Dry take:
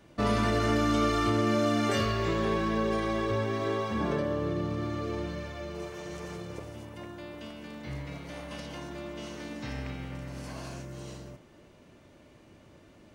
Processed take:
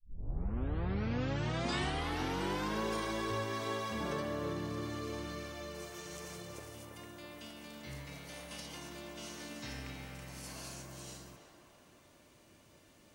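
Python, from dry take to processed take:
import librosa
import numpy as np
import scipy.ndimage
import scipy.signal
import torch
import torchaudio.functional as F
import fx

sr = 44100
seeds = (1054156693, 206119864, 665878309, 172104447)

y = fx.tape_start_head(x, sr, length_s=2.82)
y = librosa.effects.preemphasis(y, coef=0.8, zi=[0.0])
y = fx.echo_banded(y, sr, ms=328, feedback_pct=61, hz=990.0, wet_db=-4.5)
y = y * 10.0 ** (5.0 / 20.0)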